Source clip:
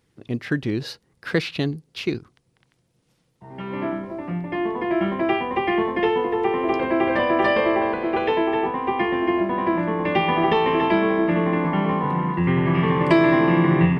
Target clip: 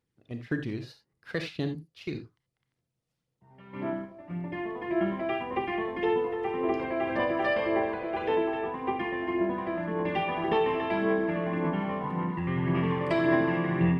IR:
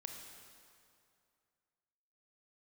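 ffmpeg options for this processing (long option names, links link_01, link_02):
-filter_complex "[0:a]aphaser=in_gain=1:out_gain=1:delay=1.7:decay=0.36:speed=1.8:type=sinusoidal,agate=range=-8dB:threshold=-29dB:ratio=16:detection=peak[link_01];[1:a]atrim=start_sample=2205,atrim=end_sample=3969[link_02];[link_01][link_02]afir=irnorm=-1:irlink=0,volume=-5.5dB"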